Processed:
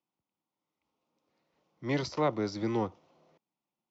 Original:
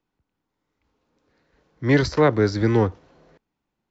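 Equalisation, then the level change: cabinet simulation 200–6800 Hz, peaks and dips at 270 Hz -6 dB, 440 Hz -8 dB, 1.6 kHz -8 dB, 4.2 kHz -4 dB; peaking EQ 1.7 kHz -6.5 dB 0.54 oct; -6.5 dB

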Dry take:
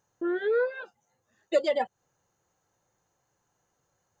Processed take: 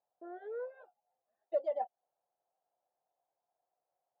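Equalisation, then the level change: band-pass filter 690 Hz, Q 7.4; 0.0 dB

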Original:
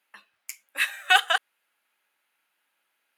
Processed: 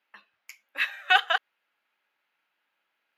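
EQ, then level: boxcar filter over 5 samples; -1.0 dB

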